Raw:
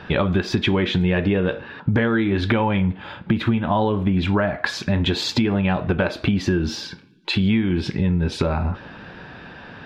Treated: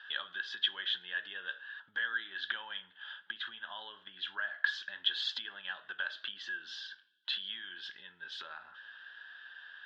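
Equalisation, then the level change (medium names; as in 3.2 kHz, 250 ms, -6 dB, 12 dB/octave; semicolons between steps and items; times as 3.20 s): two resonant band-passes 2.3 kHz, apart 0.95 oct; distance through air 96 m; tilt EQ +4 dB/octave; -7.0 dB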